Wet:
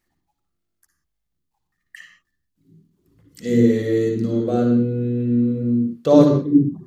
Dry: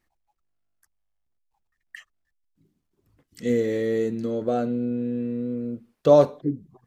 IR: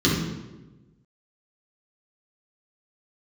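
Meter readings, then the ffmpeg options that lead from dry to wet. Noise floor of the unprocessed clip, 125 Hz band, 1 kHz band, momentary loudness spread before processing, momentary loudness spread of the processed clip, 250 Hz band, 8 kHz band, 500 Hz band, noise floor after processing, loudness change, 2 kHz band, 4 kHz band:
-77 dBFS, +11.0 dB, 0.0 dB, 13 LU, 8 LU, +10.0 dB, n/a, +2.0 dB, -76 dBFS, +6.0 dB, +3.0 dB, +4.5 dB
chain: -filter_complex "[0:a]highshelf=f=3.9k:g=6,asplit=2[a][b];[1:a]atrim=start_sample=2205,atrim=end_sample=6174,adelay=55[c];[b][c]afir=irnorm=-1:irlink=0,volume=-17dB[d];[a][d]amix=inputs=2:normalize=0,volume=-1dB"

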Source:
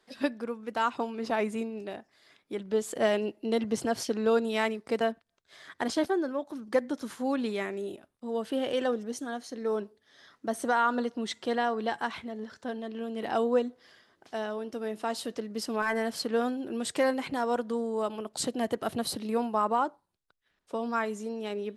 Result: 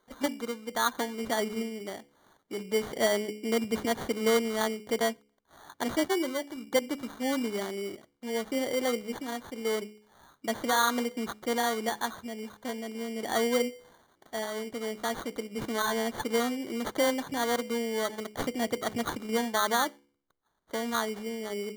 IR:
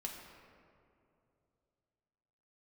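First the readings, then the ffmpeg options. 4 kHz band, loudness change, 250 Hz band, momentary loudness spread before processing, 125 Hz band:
+4.5 dB, 0.0 dB, -0.5 dB, 10 LU, n/a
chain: -af "asuperstop=centerf=2400:order=8:qfactor=1.7,bandreject=f=70.52:t=h:w=4,bandreject=f=141.04:t=h:w=4,bandreject=f=211.56:t=h:w=4,bandreject=f=282.08:t=h:w=4,bandreject=f=352.6:t=h:w=4,bandreject=f=423.12:t=h:w=4,bandreject=f=493.64:t=h:w=4,acrusher=samples=17:mix=1:aa=0.000001"

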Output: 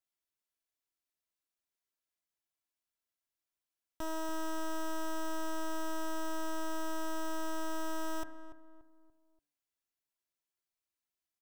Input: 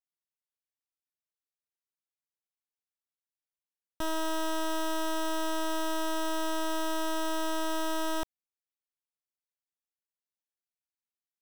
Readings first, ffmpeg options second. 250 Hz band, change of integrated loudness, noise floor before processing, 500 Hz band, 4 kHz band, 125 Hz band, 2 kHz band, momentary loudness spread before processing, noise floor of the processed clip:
-5.5 dB, -7.0 dB, under -85 dBFS, -7.0 dB, -11.0 dB, n/a, -6.5 dB, 2 LU, under -85 dBFS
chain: -filter_complex "[0:a]aecho=1:1:3:0.42,bandreject=f=145.6:t=h:w=4,bandreject=f=291.2:t=h:w=4,bandreject=f=436.8:t=h:w=4,bandreject=f=582.4:t=h:w=4,bandreject=f=728:t=h:w=4,bandreject=f=873.6:t=h:w=4,bandreject=f=1.0192k:t=h:w=4,bandreject=f=1.1648k:t=h:w=4,bandreject=f=1.3104k:t=h:w=4,bandreject=f=1.456k:t=h:w=4,bandreject=f=1.6016k:t=h:w=4,bandreject=f=1.7472k:t=h:w=4,bandreject=f=1.8928k:t=h:w=4,bandreject=f=2.0384k:t=h:w=4,bandreject=f=2.184k:t=h:w=4,alimiter=level_in=11dB:limit=-24dB:level=0:latency=1,volume=-11dB,asplit=2[a][b];[b]adelay=289,lowpass=f=1.2k:p=1,volume=-11dB,asplit=2[c][d];[d]adelay=289,lowpass=f=1.2k:p=1,volume=0.42,asplit=2[e][f];[f]adelay=289,lowpass=f=1.2k:p=1,volume=0.42,asplit=2[g][h];[h]adelay=289,lowpass=f=1.2k:p=1,volume=0.42[i];[c][e][g][i]amix=inputs=4:normalize=0[j];[a][j]amix=inputs=2:normalize=0,volume=1dB"

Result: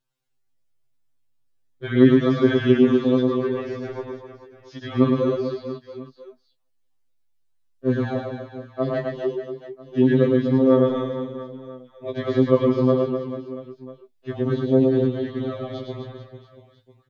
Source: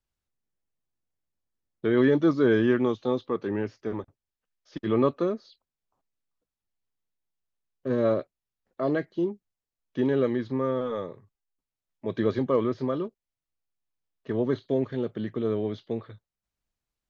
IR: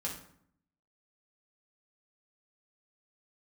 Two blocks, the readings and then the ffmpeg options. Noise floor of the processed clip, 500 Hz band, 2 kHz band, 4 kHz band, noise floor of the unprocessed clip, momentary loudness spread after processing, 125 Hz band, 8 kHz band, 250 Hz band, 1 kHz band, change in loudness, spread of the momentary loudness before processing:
-66 dBFS, +5.5 dB, +3.0 dB, +7.5 dB, under -85 dBFS, 19 LU, +9.0 dB, n/a, +7.0 dB, +3.0 dB, +6.0 dB, 14 LU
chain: -af "equalizer=f=3.6k:t=o:w=0.77:g=2.5,aecho=1:1:110|253|438.9|680.6|994.7:0.631|0.398|0.251|0.158|0.1,afftfilt=real='re*2.45*eq(mod(b,6),0)':imag='im*2.45*eq(mod(b,6),0)':win_size=2048:overlap=0.75,volume=5dB"

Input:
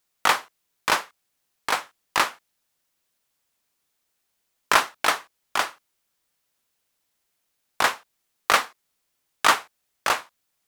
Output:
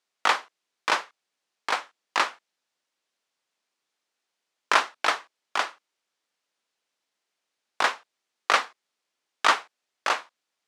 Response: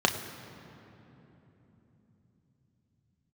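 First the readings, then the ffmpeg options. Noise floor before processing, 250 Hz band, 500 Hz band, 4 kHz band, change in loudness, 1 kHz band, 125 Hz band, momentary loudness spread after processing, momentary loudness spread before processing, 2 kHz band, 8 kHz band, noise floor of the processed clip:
-76 dBFS, -4.5 dB, -2.5 dB, -2.5 dB, -2.5 dB, -2.0 dB, under -10 dB, 10 LU, 10 LU, -2.0 dB, -7.0 dB, -83 dBFS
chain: -af "highpass=270,lowpass=6.1k,volume=-2dB"

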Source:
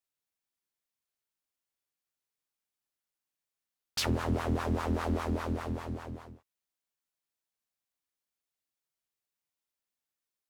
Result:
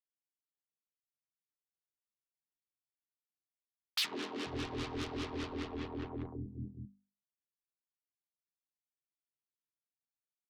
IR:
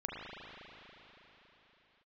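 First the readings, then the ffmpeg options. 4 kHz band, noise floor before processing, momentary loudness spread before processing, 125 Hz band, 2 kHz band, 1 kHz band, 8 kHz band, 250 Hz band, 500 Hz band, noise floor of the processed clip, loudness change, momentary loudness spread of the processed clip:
+1.0 dB, under -85 dBFS, 10 LU, -10.0 dB, -3.0 dB, -8.5 dB, -5.5 dB, -6.5 dB, -6.5 dB, under -85 dBFS, -7.0 dB, 11 LU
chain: -filter_complex "[0:a]anlmdn=0.0158,equalizer=f=390:t=o:w=0.29:g=9,bandreject=f=50:t=h:w=6,bandreject=f=100:t=h:w=6,bandreject=f=150:t=h:w=6,bandreject=f=200:t=h:w=6,bandreject=f=250:t=h:w=6,aecho=1:1:6.5:0.32,acrossover=split=340[a][b];[a]acompressor=threshold=-43dB:ratio=6[c];[c][b]amix=inputs=2:normalize=0,highpass=100,equalizer=f=210:t=q:w=4:g=5,equalizer=f=300:t=q:w=4:g=4,equalizer=f=590:t=q:w=4:g=-9,equalizer=f=1.5k:t=q:w=4:g=-3,lowpass=f=4k:w=0.5412,lowpass=f=4k:w=1.3066,asoftclip=type=tanh:threshold=-35.5dB,acrossover=split=210|1000[d][e][f];[e]adelay=70[g];[d]adelay=490[h];[h][g][f]amix=inputs=3:normalize=0,acrossover=split=200|3000[i][j][k];[j]acompressor=threshold=-54dB:ratio=5[l];[i][l][k]amix=inputs=3:normalize=0,volume=10.5dB"

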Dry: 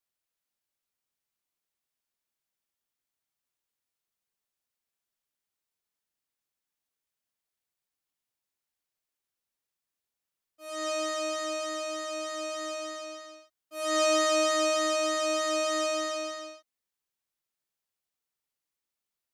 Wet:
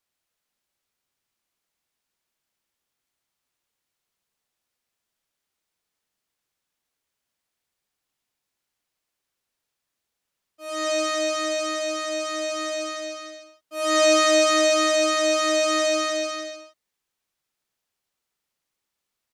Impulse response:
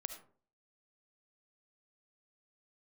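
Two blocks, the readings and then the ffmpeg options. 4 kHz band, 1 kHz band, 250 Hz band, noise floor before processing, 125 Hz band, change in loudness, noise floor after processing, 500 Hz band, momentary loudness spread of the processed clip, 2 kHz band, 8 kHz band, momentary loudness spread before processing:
+8.0 dB, +5.5 dB, +7.5 dB, under -85 dBFS, n/a, +7.0 dB, -83 dBFS, +7.0 dB, 16 LU, +8.5 dB, +7.0 dB, 16 LU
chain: -af "highshelf=f=10k:g=-7,aecho=1:1:113:0.501,volume=7.5dB"

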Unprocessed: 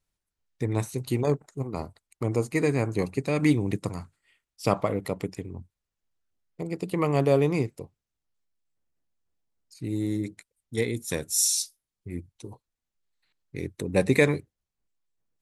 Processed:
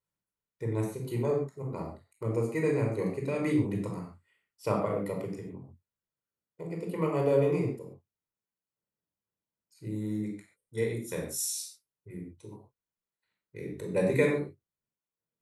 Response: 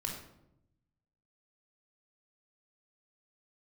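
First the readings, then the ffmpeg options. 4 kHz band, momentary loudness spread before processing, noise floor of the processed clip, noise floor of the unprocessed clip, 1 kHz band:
-11.0 dB, 17 LU, under -85 dBFS, under -85 dBFS, -5.0 dB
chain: -filter_complex "[0:a]highpass=f=240:p=1,equalizer=f=4.7k:w=0.59:g=-8[a];[1:a]atrim=start_sample=2205,atrim=end_sample=6615[b];[a][b]afir=irnorm=-1:irlink=0,volume=-4dB"

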